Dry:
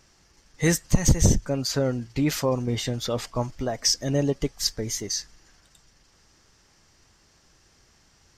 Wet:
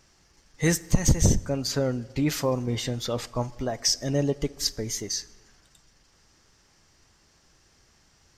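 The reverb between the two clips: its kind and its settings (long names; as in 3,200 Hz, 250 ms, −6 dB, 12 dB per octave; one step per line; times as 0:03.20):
dense smooth reverb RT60 1.5 s, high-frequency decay 0.55×, DRR 18.5 dB
level −1.5 dB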